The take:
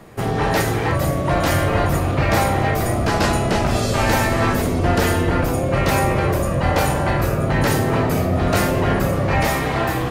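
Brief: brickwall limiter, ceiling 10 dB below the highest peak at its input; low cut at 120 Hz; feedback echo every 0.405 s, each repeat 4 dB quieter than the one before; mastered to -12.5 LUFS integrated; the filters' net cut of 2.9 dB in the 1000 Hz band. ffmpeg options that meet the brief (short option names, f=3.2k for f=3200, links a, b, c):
-af "highpass=120,equalizer=f=1k:t=o:g=-4,alimiter=limit=-16dB:level=0:latency=1,aecho=1:1:405|810|1215|1620|2025|2430|2835|3240|3645:0.631|0.398|0.25|0.158|0.0994|0.0626|0.0394|0.0249|0.0157,volume=10dB"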